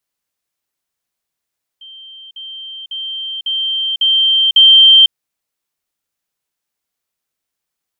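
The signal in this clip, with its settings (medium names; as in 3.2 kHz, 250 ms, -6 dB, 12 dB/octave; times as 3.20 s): level ladder 3.14 kHz -33 dBFS, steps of 6 dB, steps 6, 0.50 s 0.05 s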